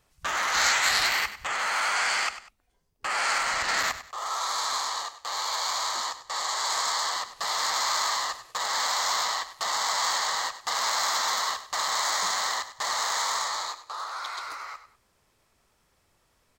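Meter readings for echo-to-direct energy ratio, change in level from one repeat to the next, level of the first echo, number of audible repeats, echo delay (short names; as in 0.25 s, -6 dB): -12.5 dB, -10.0 dB, -13.0 dB, 2, 98 ms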